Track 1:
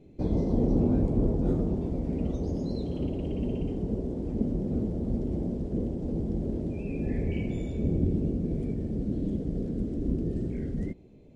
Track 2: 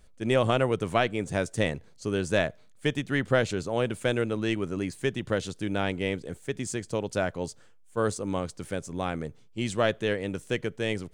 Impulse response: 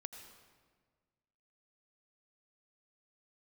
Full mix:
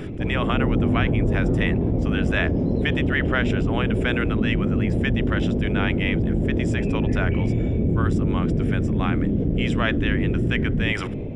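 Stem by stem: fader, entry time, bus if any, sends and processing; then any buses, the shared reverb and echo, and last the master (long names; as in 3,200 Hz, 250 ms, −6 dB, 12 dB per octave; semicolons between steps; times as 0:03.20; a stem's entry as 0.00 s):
−10.5 dB, 0.00 s, no send, parametric band 110 Hz +7.5 dB 0.29 octaves; automatic gain control gain up to 6 dB
−3.0 dB, 0.00 s, no send, high-pass filter 1,200 Hz 12 dB per octave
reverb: not used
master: automatic gain control gain up to 6 dB; Savitzky-Golay smoothing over 25 samples; envelope flattener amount 70%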